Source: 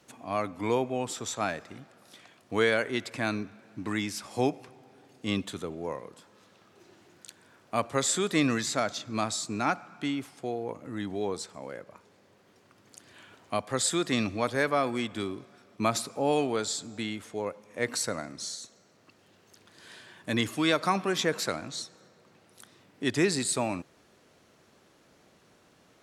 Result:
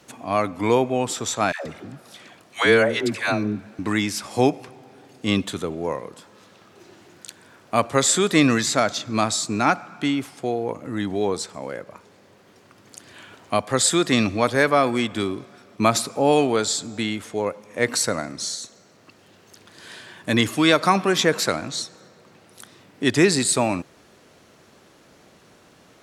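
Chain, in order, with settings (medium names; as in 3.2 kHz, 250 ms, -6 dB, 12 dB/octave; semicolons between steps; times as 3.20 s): 1.52–3.79 s: phase dispersion lows, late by 143 ms, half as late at 650 Hz; trim +8.5 dB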